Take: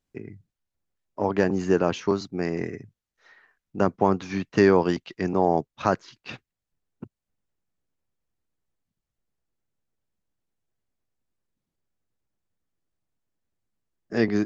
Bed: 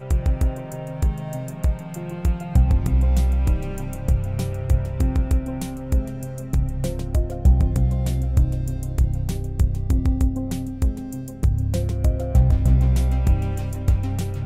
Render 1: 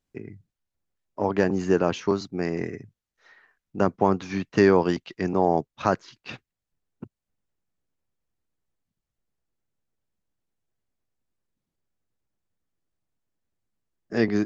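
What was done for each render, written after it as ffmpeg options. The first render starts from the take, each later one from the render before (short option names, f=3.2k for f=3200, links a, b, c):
-af anull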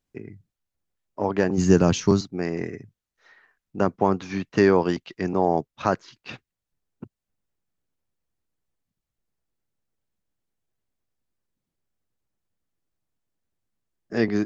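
-filter_complex "[0:a]asplit=3[a][b][c];[a]afade=t=out:st=1.57:d=0.02[d];[b]bass=f=250:g=13,treble=f=4k:g=14,afade=t=in:st=1.57:d=0.02,afade=t=out:st=2.2:d=0.02[e];[c]afade=t=in:st=2.2:d=0.02[f];[d][e][f]amix=inputs=3:normalize=0"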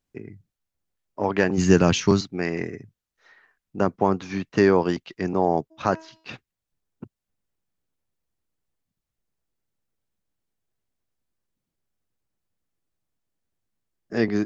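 -filter_complex "[0:a]asettb=1/sr,asplit=3[a][b][c];[a]atrim=end=1.234[d];[b]atrim=start=1.23:end=2.63,asetpts=PTS-STARTPTS,afade=t=in:d=0.004:c=qsin,afade=t=out:st=1.396:d=0.004:c=qsin,equalizer=f=2.4k:t=o:w=1.7:g=7[e];[c]atrim=start=2.626[f];[d][e]acrossfade=d=0.004:c1=hsin:c2=qsin[g];[g][f]acrossfade=d=0.004:c1=qsin:c2=hsin,asplit=3[h][i][j];[h]afade=t=out:st=5.7:d=0.02[k];[i]bandreject=f=321.2:t=h:w=4,bandreject=f=642.4:t=h:w=4,bandreject=f=963.6:t=h:w=4,bandreject=f=1.2848k:t=h:w=4,bandreject=f=1.606k:t=h:w=4,bandreject=f=1.9272k:t=h:w=4,bandreject=f=2.2484k:t=h:w=4,bandreject=f=2.5696k:t=h:w=4,bandreject=f=2.8908k:t=h:w=4,bandreject=f=3.212k:t=h:w=4,bandreject=f=3.5332k:t=h:w=4,bandreject=f=3.8544k:t=h:w=4,bandreject=f=4.1756k:t=h:w=4,bandreject=f=4.4968k:t=h:w=4,bandreject=f=4.818k:t=h:w=4,bandreject=f=5.1392k:t=h:w=4,bandreject=f=5.4604k:t=h:w=4,bandreject=f=5.7816k:t=h:w=4,bandreject=f=6.1028k:t=h:w=4,bandreject=f=6.424k:t=h:w=4,bandreject=f=6.7452k:t=h:w=4,bandreject=f=7.0664k:t=h:w=4,bandreject=f=7.3876k:t=h:w=4,bandreject=f=7.7088k:t=h:w=4,bandreject=f=8.03k:t=h:w=4,bandreject=f=8.3512k:t=h:w=4,bandreject=f=8.6724k:t=h:w=4,bandreject=f=8.9936k:t=h:w=4,bandreject=f=9.3148k:t=h:w=4,bandreject=f=9.636k:t=h:w=4,bandreject=f=9.9572k:t=h:w=4,bandreject=f=10.2784k:t=h:w=4,bandreject=f=10.5996k:t=h:w=4,bandreject=f=10.9208k:t=h:w=4,bandreject=f=11.242k:t=h:w=4,bandreject=f=11.5632k:t=h:w=4,bandreject=f=11.8844k:t=h:w=4,bandreject=f=12.2056k:t=h:w=4,bandreject=f=12.5268k:t=h:w=4,bandreject=f=12.848k:t=h:w=4,afade=t=in:st=5.7:d=0.02,afade=t=out:st=6.32:d=0.02[l];[j]afade=t=in:st=6.32:d=0.02[m];[k][l][m]amix=inputs=3:normalize=0"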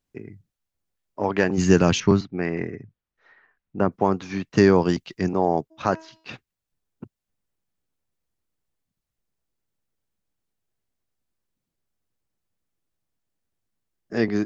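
-filter_complex "[0:a]asettb=1/sr,asplit=3[a][b][c];[a]atrim=end=2.004[d];[b]atrim=start=2:end=3.92,asetpts=PTS-STARTPTS,afade=t=in:d=0.004:c=qsin,afade=t=out:st=1.916:d=0.004:c=qsin,bass=f=250:g=2,treble=f=4k:g=-15[e];[c]atrim=start=3.916[f];[d][e]acrossfade=d=0.004:c1=hsin:c2=qsin[g];[g][f]acrossfade=d=0.004:c1=qsin:c2=hsin,asettb=1/sr,asplit=3[h][i][j];[h]atrim=end=4.534[k];[i]atrim=start=4.53:end=5.29,asetpts=PTS-STARTPTS,afade=t=in:d=0.004:c=qsin,afade=t=out:st=0.756:d=0.004:c=qsin,bass=f=250:g=6,treble=f=4k:g=6[l];[j]atrim=start=5.286[m];[k][l]acrossfade=d=0.004:c1=hsin:c2=qsin[n];[n][m]acrossfade=d=0.004:c1=qsin:c2=hsin"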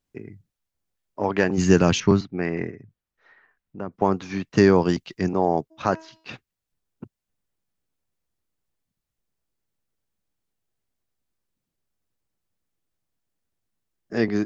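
-filter_complex "[0:a]asettb=1/sr,asplit=3[a][b][c];[a]atrim=end=2.714[d];[b]atrim=start=2.71:end=4.02,asetpts=PTS-STARTPTS,afade=t=in:d=0.004:c=qsin,afade=t=out:st=1.306:d=0.004:c=qsin,acompressor=threshold=-46dB:ratio=1.5:attack=3.2:release=140:knee=1:detection=peak[e];[c]atrim=start=4.016[f];[d][e]acrossfade=d=0.004:c1=hsin:c2=qsin[g];[g][f]acrossfade=d=0.004:c1=qsin:c2=hsin"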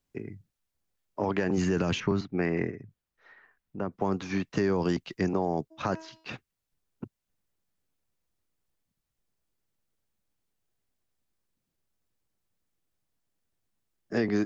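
-filter_complex "[0:a]alimiter=limit=-13.5dB:level=0:latency=1:release=31,acrossover=split=320|2700|6400[a][b][c][d];[a]acompressor=threshold=-27dB:ratio=4[e];[b]acompressor=threshold=-27dB:ratio=4[f];[c]acompressor=threshold=-47dB:ratio=4[g];[d]acompressor=threshold=-53dB:ratio=4[h];[e][f][g][h]amix=inputs=4:normalize=0"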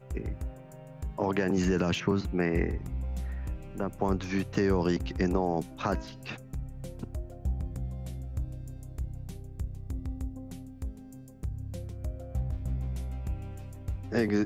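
-filter_complex "[1:a]volume=-16dB[a];[0:a][a]amix=inputs=2:normalize=0"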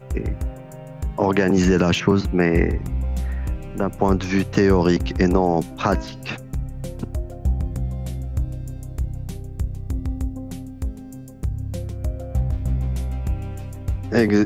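-af "volume=10dB"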